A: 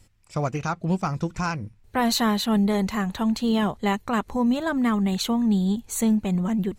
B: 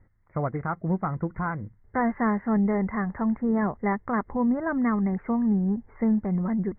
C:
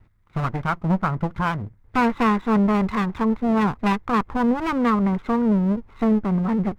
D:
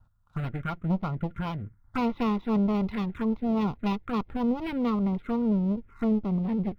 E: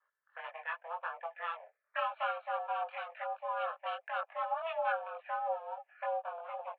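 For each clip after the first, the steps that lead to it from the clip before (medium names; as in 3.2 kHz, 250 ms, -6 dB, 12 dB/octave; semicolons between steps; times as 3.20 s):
Chebyshev low-pass 2.1 kHz, order 8; trim -1.5 dB
comb filter that takes the minimum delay 0.84 ms; dynamic bell 1 kHz, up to +3 dB, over -37 dBFS, Q 1.1; trim +5 dB
touch-sensitive phaser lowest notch 360 Hz, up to 1.6 kHz, full sweep at -18 dBFS; small resonant body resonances 1.4 kHz, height 11 dB, ringing for 40 ms; trim -5.5 dB
chorus voices 4, 0.84 Hz, delay 21 ms, depth 2.2 ms; mistuned SSB +330 Hz 320–2700 Hz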